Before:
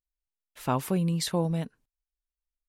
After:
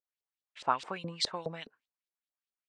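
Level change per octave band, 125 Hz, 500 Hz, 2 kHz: -18.0 dB, -8.0 dB, +0.5 dB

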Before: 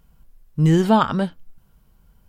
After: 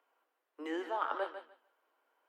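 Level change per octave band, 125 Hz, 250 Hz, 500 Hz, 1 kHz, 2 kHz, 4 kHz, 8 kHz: under -40 dB, -25.0 dB, -16.0 dB, -14.5 dB, -11.0 dB, -18.0 dB, under -25 dB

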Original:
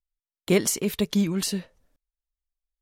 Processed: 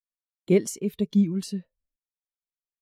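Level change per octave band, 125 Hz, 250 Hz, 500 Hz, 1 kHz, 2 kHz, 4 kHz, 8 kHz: +1.0 dB, +1.0 dB, +0.5 dB, under -10 dB, -8.5 dB, -11.5 dB, -9.0 dB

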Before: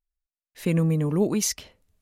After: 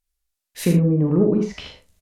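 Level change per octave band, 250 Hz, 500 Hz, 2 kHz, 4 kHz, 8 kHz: +6.0 dB, +5.5 dB, +1.0 dB, -1.5 dB, -9.0 dB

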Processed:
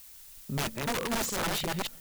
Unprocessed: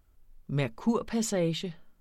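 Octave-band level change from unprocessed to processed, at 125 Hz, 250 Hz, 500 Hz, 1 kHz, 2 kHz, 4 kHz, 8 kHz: -4.0 dB, -6.0 dB, -4.0 dB, +6.0 dB, +7.0 dB, +5.5 dB, +4.0 dB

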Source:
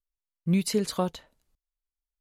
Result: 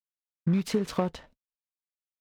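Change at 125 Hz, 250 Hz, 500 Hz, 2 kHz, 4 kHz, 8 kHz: 0.0 dB, -0.5 dB, -1.0 dB, -1.0 dB, -5.5 dB, -8.5 dB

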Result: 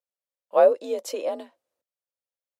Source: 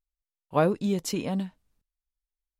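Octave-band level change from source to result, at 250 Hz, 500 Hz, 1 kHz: -13.0 dB, +8.0 dB, +3.5 dB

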